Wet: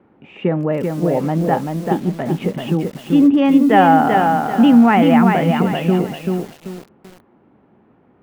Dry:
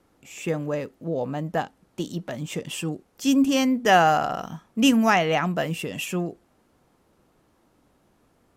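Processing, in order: low shelf 220 Hz +10.5 dB; in parallel at +1.5 dB: limiter -15 dBFS, peak gain reduction 11.5 dB; on the sum: speaker cabinet 130–2500 Hz, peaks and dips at 210 Hz +5 dB, 380 Hz +5 dB, 800 Hz +5 dB; speed mistake 24 fps film run at 25 fps; lo-fi delay 0.387 s, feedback 35%, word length 6-bit, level -3.5 dB; gain -2 dB

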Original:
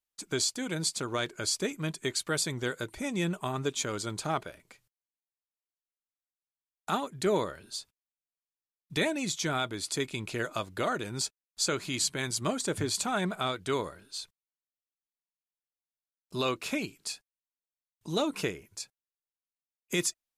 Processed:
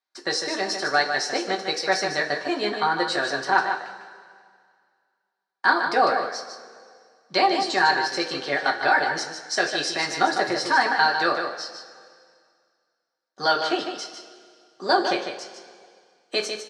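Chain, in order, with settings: speaker cabinet 310–4200 Hz, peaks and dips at 670 Hz +5 dB, 1300 Hz +7 dB, 2300 Hz -8 dB, 3400 Hz +3 dB; on a send: echo 0.184 s -7.5 dB; on the sum: two-slope reverb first 0.24 s, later 2.5 s, from -18 dB, DRR 0 dB; varispeed +22%; gain +5.5 dB

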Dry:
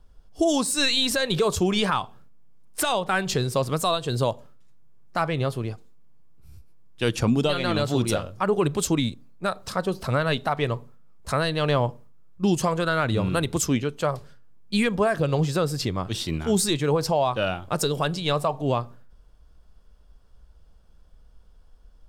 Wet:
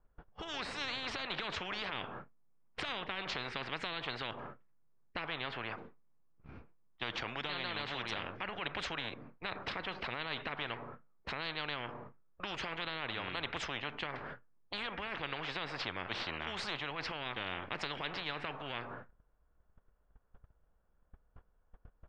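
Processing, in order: gate -44 dBFS, range -28 dB; LPF 2100 Hz 24 dB/oct; low shelf 260 Hz -9.5 dB; limiter -18.5 dBFS, peak gain reduction 6.5 dB; spectral compressor 10:1; gain -2 dB

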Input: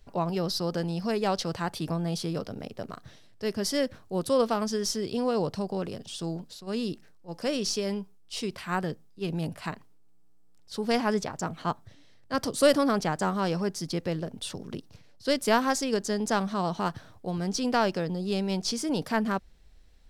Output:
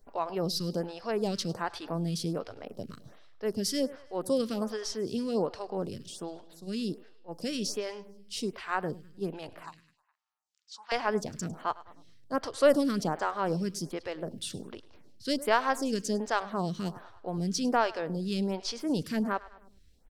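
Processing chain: 9.63–10.92 elliptic band-pass 940–7000 Hz, stop band 40 dB; on a send: feedback echo 0.103 s, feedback 51%, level -19 dB; on the sum: photocell phaser 1.3 Hz

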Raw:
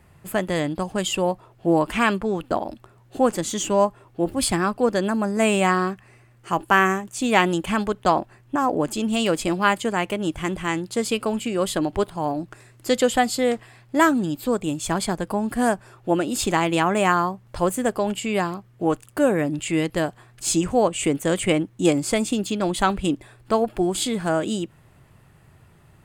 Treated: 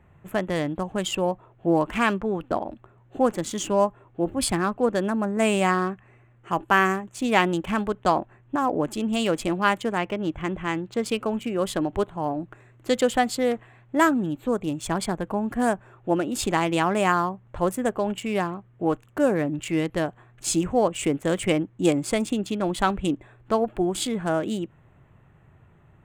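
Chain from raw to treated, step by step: Wiener smoothing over 9 samples; 9.98–11.06 bell 11000 Hz -14.5 dB 0.75 oct; gain -2 dB

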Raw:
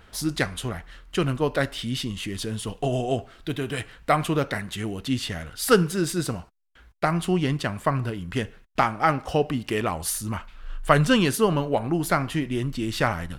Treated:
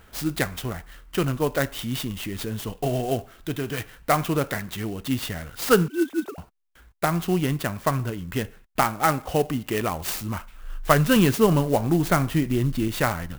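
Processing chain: 5.88–6.38 sine-wave speech; 11.16–12.88 low shelf 320 Hz +6 dB; clock jitter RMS 0.038 ms

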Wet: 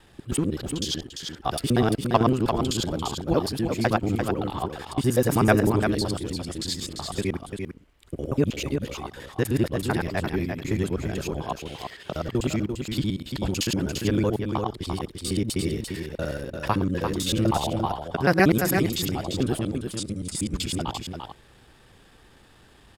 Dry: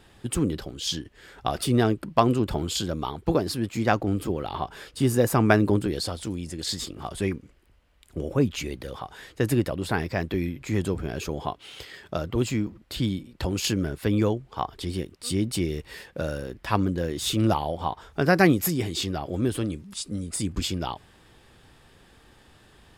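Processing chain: local time reversal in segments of 63 ms; on a send: echo 0.344 s -6 dB

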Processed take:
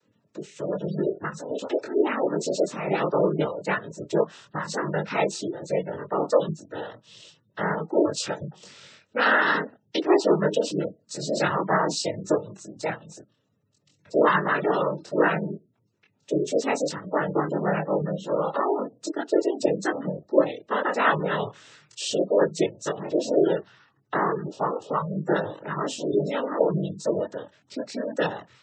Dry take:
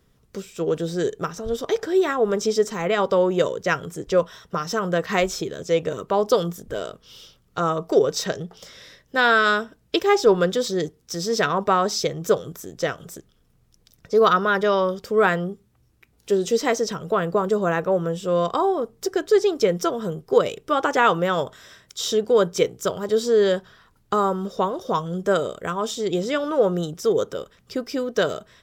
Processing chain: noise vocoder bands 12; chorus voices 4, 0.12 Hz, delay 23 ms, depth 3.8 ms; spectral gate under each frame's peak -25 dB strong

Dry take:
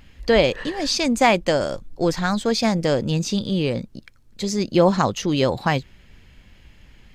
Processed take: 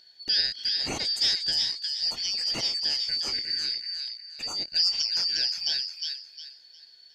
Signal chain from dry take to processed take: four-band scrambler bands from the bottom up 4321; thin delay 0.358 s, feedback 30%, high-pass 1800 Hz, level -4 dB; gain -9 dB

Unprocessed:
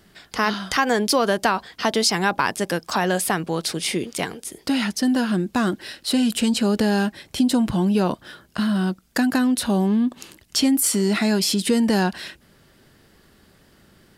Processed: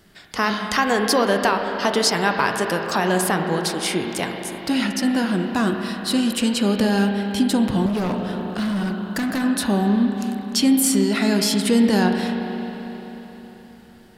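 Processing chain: spring tank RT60 4 s, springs 30/38 ms, chirp 35 ms, DRR 3.5 dB; 7.86–9.44 hard clip -20 dBFS, distortion -18 dB

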